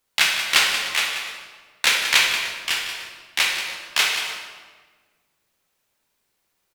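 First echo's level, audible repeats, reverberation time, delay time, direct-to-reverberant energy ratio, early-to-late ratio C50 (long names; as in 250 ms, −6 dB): −10.5 dB, 2, 1.4 s, 183 ms, −0.5 dB, 1.5 dB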